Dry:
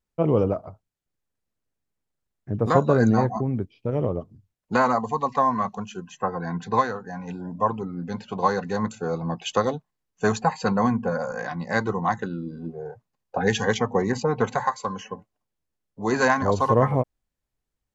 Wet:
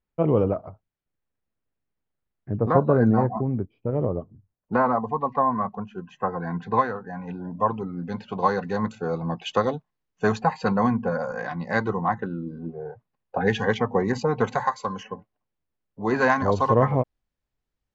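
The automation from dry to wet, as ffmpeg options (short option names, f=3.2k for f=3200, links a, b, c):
-af "asetnsamples=n=441:p=0,asendcmd='2.56 lowpass f 1400;5.98 lowpass f 2500;7.45 lowpass f 4000;12.01 lowpass f 1900;12.69 lowpass f 3000;14.08 lowpass f 5700;15.03 lowpass f 3100;16.28 lowpass f 5000',lowpass=2.9k"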